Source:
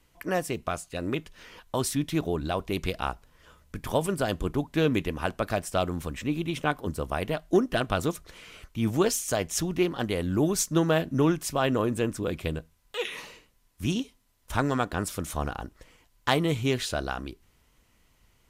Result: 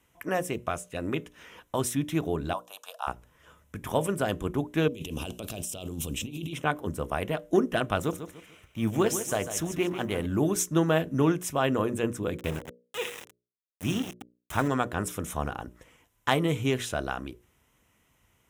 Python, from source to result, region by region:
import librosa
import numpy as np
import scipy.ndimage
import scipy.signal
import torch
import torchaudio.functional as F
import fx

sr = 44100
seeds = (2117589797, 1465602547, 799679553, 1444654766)

y = fx.chain(x, sr, fx.highpass(hz=620.0, slope=24),
    fx.fixed_phaser(hz=870.0, stages=4), at=(2.53, 3.07))
y = fx.chain(y, sr, fx.curve_eq(hz=(400.0, 1900.0, 2800.0), db=(0, -16, 7)),
    fx.over_compress(threshold_db=-35.0, ratio=-1.0), at=(4.88, 6.53))
y = fx.chain(y, sr, fx.law_mismatch(coded='A'),
    fx.echo_feedback(ms=147, feedback_pct=32, wet_db=-10.5), at=(7.98, 10.26))
y = fx.chain(y, sr, fx.reverse_delay_fb(ms=109, feedback_pct=44, wet_db=-9),
    fx.sample_gate(floor_db=-34.0), at=(12.37, 14.68))
y = scipy.signal.sosfilt(scipy.signal.butter(2, 65.0, 'highpass', fs=sr, output='sos'), y)
y = fx.peak_eq(y, sr, hz=4500.0, db=-14.5, octaves=0.31)
y = fx.hum_notches(y, sr, base_hz=60, count=10)